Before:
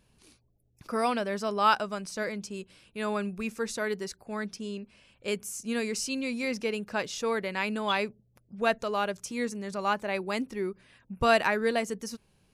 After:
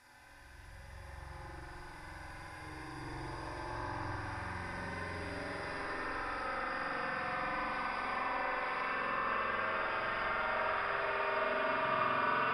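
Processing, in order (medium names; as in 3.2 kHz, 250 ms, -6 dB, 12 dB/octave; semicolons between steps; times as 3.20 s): spectral blur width 202 ms; chorus voices 4, 0.79 Hz, delay 23 ms, depth 2.8 ms; spectral gate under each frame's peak -15 dB weak; phase dispersion highs, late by 47 ms, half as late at 1.7 kHz; Paulstretch 40×, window 0.05 s, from 0.81 s; spring tank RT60 3.2 s, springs 45 ms, chirp 80 ms, DRR -6 dB; low-pass that closes with the level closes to 2.6 kHz, closed at -36.5 dBFS; bass shelf 220 Hz +6 dB; trim +5 dB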